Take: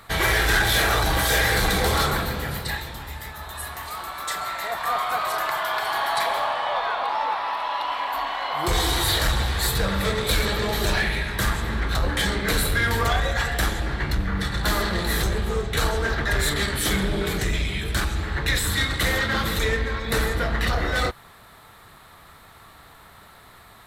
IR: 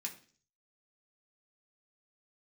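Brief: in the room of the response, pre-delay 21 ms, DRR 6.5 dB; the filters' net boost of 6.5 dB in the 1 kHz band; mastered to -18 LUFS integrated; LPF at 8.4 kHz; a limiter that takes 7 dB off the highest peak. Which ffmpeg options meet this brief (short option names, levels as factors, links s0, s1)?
-filter_complex "[0:a]lowpass=8400,equalizer=f=1000:t=o:g=8,alimiter=limit=0.211:level=0:latency=1,asplit=2[s0][s1];[1:a]atrim=start_sample=2205,adelay=21[s2];[s1][s2]afir=irnorm=-1:irlink=0,volume=0.562[s3];[s0][s3]amix=inputs=2:normalize=0,volume=1.68"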